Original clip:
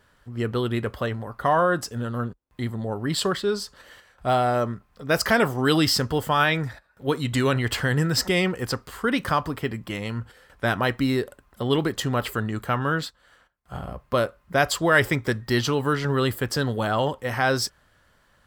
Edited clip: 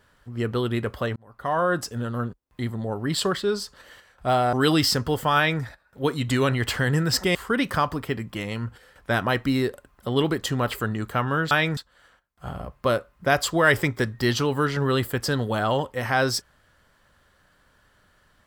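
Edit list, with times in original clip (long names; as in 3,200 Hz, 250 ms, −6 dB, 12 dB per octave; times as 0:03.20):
0:01.16–0:01.77: fade in
0:04.53–0:05.57: remove
0:06.40–0:06.66: duplicate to 0:13.05
0:08.39–0:08.89: remove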